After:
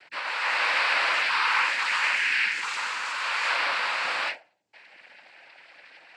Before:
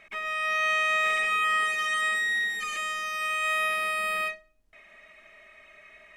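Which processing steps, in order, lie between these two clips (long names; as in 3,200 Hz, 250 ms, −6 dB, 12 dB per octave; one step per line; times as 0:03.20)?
low-shelf EQ 200 Hz −9.5 dB
cochlear-implant simulation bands 8
level +2 dB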